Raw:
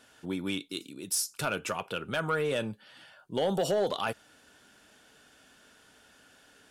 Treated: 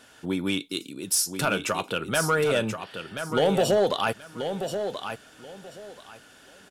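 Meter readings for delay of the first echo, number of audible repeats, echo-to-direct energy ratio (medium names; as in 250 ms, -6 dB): 1032 ms, 2, -8.0 dB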